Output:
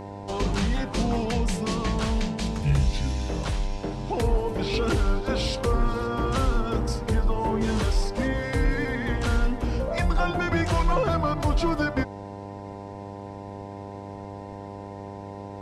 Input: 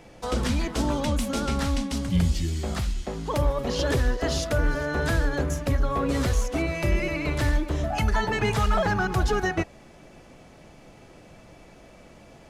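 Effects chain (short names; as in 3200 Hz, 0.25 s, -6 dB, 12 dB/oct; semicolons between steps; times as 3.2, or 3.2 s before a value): varispeed -20%; buzz 100 Hz, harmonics 10, -38 dBFS -2 dB/oct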